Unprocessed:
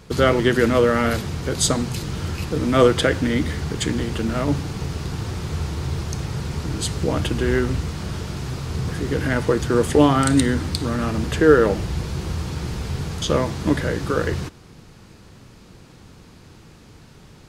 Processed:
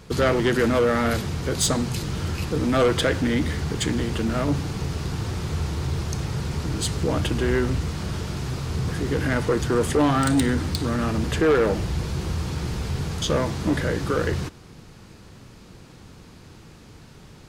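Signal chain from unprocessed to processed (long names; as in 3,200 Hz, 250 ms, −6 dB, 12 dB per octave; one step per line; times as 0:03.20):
soft clipping −14 dBFS, distortion −11 dB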